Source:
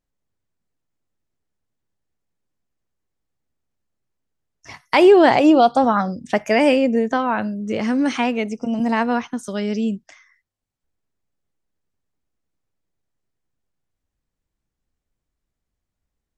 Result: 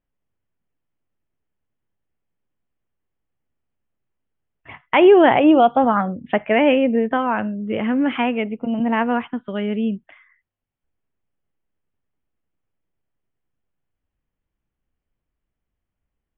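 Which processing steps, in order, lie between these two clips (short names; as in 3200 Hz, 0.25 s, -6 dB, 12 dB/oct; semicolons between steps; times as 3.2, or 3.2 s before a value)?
steep low-pass 3300 Hz 96 dB/oct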